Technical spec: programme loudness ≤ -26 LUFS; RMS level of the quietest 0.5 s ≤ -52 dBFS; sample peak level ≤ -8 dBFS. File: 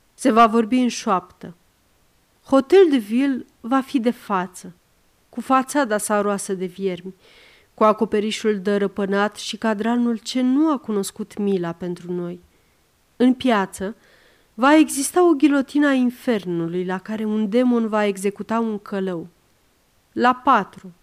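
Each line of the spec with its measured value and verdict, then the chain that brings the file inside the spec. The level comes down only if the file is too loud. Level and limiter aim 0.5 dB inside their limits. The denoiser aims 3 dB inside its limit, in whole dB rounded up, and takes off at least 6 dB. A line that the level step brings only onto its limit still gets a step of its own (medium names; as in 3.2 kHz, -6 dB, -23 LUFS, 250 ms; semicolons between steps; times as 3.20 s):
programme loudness -20.0 LUFS: fail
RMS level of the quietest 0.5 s -61 dBFS: pass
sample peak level -4.5 dBFS: fail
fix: trim -6.5 dB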